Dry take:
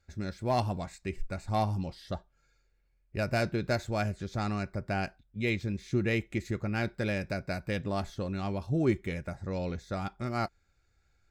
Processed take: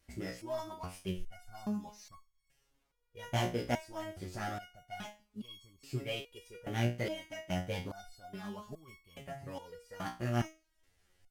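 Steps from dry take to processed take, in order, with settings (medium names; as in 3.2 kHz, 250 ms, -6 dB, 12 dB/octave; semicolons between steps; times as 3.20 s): CVSD coder 64 kbps; in parallel at -0.5 dB: compression, threshold -37 dBFS, peak gain reduction 15 dB; on the sum: flange 1.1 Hz, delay 2.9 ms, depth 6.1 ms, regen +49%; formant shift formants +4 st; resonator arpeggio 2.4 Hz 60–1100 Hz; trim +6 dB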